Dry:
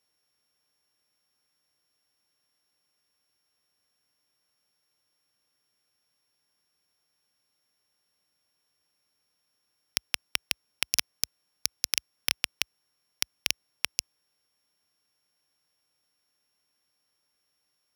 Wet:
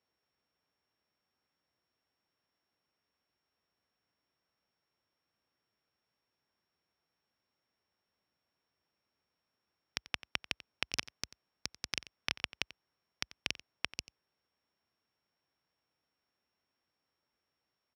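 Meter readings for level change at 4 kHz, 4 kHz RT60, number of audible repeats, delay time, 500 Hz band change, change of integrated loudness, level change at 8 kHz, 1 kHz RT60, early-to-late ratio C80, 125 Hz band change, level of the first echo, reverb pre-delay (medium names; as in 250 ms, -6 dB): -8.5 dB, no reverb, 1, 90 ms, -1.0 dB, -9.0 dB, -14.0 dB, no reverb, no reverb, 0.0 dB, -18.0 dB, no reverb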